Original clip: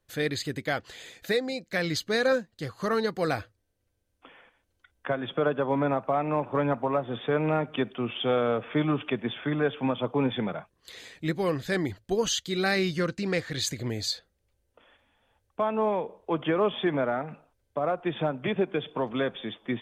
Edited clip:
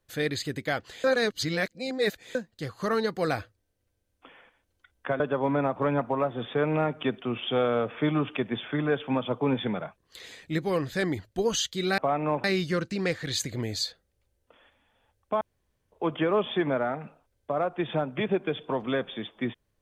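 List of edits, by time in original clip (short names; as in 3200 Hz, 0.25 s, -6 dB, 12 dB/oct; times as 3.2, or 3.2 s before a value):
1.04–2.35 reverse
5.2–5.47 cut
6.03–6.49 move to 12.71
15.68–16.19 room tone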